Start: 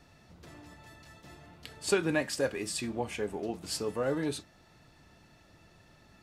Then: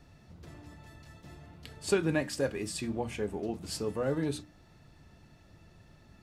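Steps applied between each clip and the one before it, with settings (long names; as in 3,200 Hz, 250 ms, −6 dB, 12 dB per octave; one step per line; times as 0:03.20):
low-shelf EQ 280 Hz +9.5 dB
mains-hum notches 60/120/180/240/300 Hz
level −3 dB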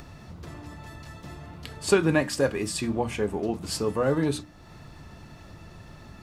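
parametric band 1,100 Hz +5 dB 0.6 octaves
in parallel at +1 dB: upward compression, threshold −40 dBFS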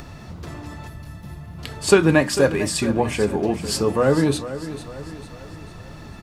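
gain on a spectral selection 0:00.88–0:01.59, 220–9,500 Hz −9 dB
repeating echo 448 ms, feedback 47%, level −13 dB
level +6.5 dB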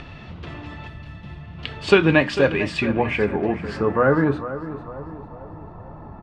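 low-pass filter sweep 3,000 Hz → 940 Hz, 0:02.49–0:05.30
level −1 dB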